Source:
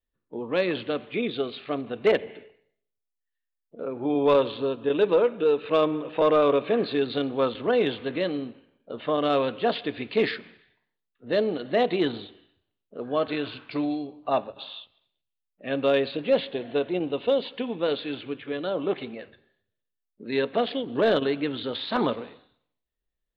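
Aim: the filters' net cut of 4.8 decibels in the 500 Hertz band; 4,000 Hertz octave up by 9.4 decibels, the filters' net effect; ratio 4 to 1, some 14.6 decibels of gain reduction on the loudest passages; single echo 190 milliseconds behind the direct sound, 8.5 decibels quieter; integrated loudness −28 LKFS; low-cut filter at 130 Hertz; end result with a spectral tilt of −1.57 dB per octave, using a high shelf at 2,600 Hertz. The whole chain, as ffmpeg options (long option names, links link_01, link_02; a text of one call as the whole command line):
ffmpeg -i in.wav -af "highpass=130,equalizer=frequency=500:width_type=o:gain=-6,highshelf=frequency=2600:gain=4.5,equalizer=frequency=4000:width_type=o:gain=8,acompressor=threshold=-37dB:ratio=4,aecho=1:1:190:0.376,volume=10dB" out.wav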